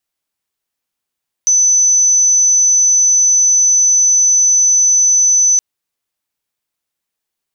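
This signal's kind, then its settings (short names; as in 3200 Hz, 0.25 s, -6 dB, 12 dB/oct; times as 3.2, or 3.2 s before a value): tone sine 6030 Hz -7.5 dBFS 4.12 s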